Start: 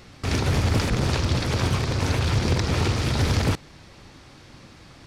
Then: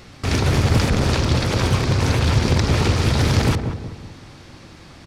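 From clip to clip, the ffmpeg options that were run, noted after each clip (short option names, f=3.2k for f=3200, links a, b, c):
-filter_complex "[0:a]asplit=2[a][b];[b]adelay=185,lowpass=f=930:p=1,volume=-6dB,asplit=2[c][d];[d]adelay=185,lowpass=f=930:p=1,volume=0.46,asplit=2[e][f];[f]adelay=185,lowpass=f=930:p=1,volume=0.46,asplit=2[g][h];[h]adelay=185,lowpass=f=930:p=1,volume=0.46,asplit=2[i][j];[j]adelay=185,lowpass=f=930:p=1,volume=0.46,asplit=2[k][l];[l]adelay=185,lowpass=f=930:p=1,volume=0.46[m];[a][c][e][g][i][k][m]amix=inputs=7:normalize=0,volume=4dB"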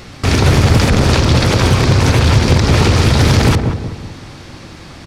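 -af "alimiter=level_in=9.5dB:limit=-1dB:release=50:level=0:latency=1,volume=-1dB"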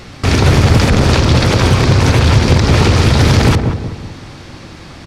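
-af "highshelf=f=8.7k:g=-4.5,volume=1dB"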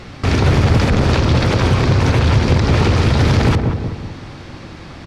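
-filter_complex "[0:a]lowpass=f=3.7k:p=1,asplit=2[a][b];[b]alimiter=limit=-12dB:level=0:latency=1:release=130,volume=-2dB[c];[a][c]amix=inputs=2:normalize=0,volume=-5.5dB"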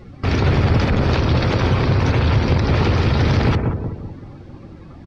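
-filter_complex "[0:a]asplit=2[a][b];[b]adelay=130,highpass=300,lowpass=3.4k,asoftclip=type=hard:threshold=-14.5dB,volume=-11dB[c];[a][c]amix=inputs=2:normalize=0,afftdn=nr=15:nf=-33,volume=-3dB"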